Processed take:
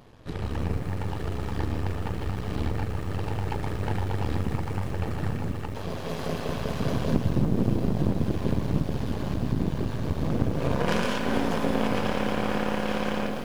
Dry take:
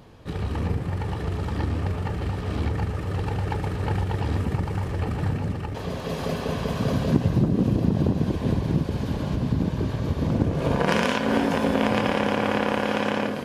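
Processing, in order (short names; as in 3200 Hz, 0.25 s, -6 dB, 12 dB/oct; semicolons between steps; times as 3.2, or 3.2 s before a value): half-wave gain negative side -12 dB; lo-fi delay 0.157 s, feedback 55%, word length 7-bit, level -12.5 dB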